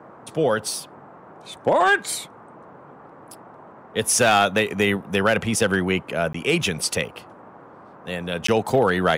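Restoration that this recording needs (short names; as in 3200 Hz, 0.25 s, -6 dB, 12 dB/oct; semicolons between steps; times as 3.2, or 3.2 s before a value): clip repair -10 dBFS; interpolate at 6.33/8.47, 14 ms; noise print and reduce 21 dB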